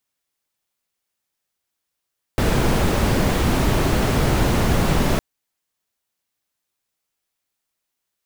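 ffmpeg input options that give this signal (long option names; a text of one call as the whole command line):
ffmpeg -f lavfi -i "anoisesrc=color=brown:amplitude=0.624:duration=2.81:sample_rate=44100:seed=1" out.wav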